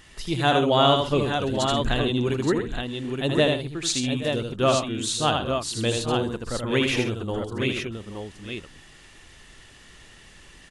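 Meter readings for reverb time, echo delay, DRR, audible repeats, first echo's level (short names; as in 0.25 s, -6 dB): none, 79 ms, none, 4, -4.5 dB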